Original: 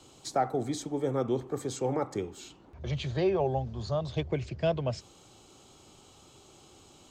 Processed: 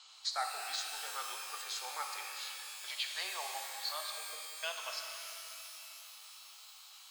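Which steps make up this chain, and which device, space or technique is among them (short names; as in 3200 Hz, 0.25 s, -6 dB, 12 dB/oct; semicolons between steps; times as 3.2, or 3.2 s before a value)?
HPF 180 Hz; headphones lying on a table (HPF 1100 Hz 24 dB/oct; bell 4400 Hz +9 dB 0.47 oct); 4.1–4.62 steep low-pass 750 Hz; air absorption 79 m; shimmer reverb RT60 3 s, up +12 st, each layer -2 dB, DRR 3 dB; gain +1.5 dB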